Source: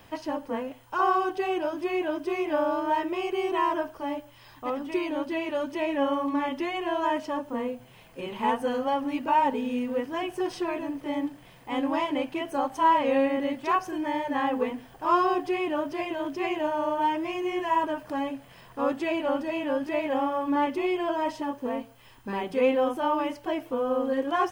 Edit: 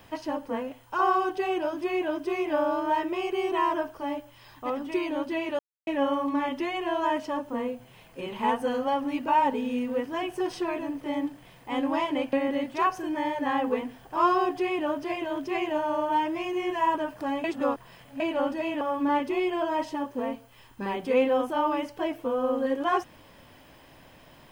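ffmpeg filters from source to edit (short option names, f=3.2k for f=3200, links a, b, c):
-filter_complex "[0:a]asplit=7[a][b][c][d][e][f][g];[a]atrim=end=5.59,asetpts=PTS-STARTPTS,afade=t=out:st=5.586:d=0.004:c=hsin[h];[b]atrim=start=5.59:end=5.87,asetpts=PTS-STARTPTS,volume=0[i];[c]atrim=start=5.87:end=12.332,asetpts=PTS-STARTPTS,afade=t=in:d=0.004:c=hsin[j];[d]atrim=start=13.218:end=18.332[k];[e]atrim=start=18.328:end=19.092,asetpts=PTS-STARTPTS,areverse[l];[f]atrim=start=19.088:end=19.702[m];[g]atrim=start=20.278[n];[h][i][j]concat=n=3:v=0:a=1[o];[o][k]acrossfade=d=0.004:c1=hsin:c2=hsin[p];[p][l]acrossfade=d=0.004:c1=hsin:c2=hsin[q];[q][m]acrossfade=d=0.004:c1=hsin:c2=hsin[r];[r][n]acrossfade=d=0.004:c1=hsin:c2=hsin"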